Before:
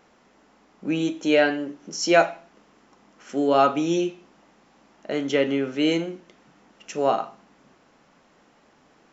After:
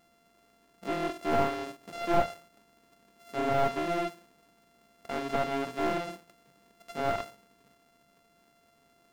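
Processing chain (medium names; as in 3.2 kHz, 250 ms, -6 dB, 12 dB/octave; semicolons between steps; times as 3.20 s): sorted samples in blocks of 64 samples; slew-rate limiter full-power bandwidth 190 Hz; trim -7 dB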